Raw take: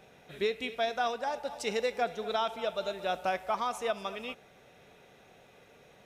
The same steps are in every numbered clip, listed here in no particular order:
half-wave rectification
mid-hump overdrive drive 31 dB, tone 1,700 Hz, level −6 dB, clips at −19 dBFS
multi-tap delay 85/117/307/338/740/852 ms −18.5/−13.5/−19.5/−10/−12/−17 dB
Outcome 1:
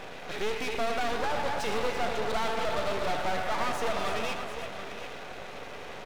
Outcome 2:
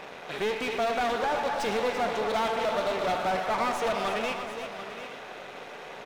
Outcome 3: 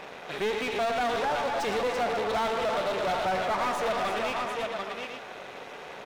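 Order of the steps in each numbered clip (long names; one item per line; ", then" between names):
mid-hump overdrive, then multi-tap delay, then half-wave rectification
half-wave rectification, then mid-hump overdrive, then multi-tap delay
multi-tap delay, then half-wave rectification, then mid-hump overdrive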